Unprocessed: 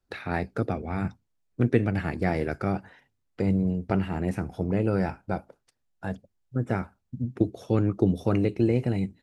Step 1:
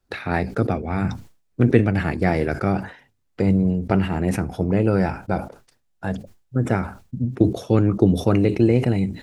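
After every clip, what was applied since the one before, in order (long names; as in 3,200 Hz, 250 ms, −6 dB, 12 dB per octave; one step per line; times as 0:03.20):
level that may fall only so fast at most 130 dB per second
level +6 dB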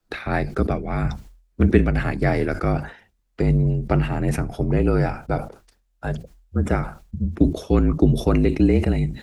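frequency shifter −42 Hz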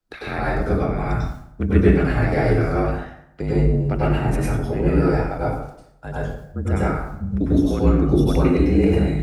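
dense smooth reverb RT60 0.73 s, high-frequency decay 0.65×, pre-delay 85 ms, DRR −7.5 dB
level −6.5 dB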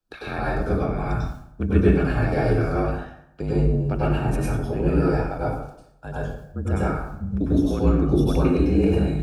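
Butterworth band-reject 2,000 Hz, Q 6.2
level −2.5 dB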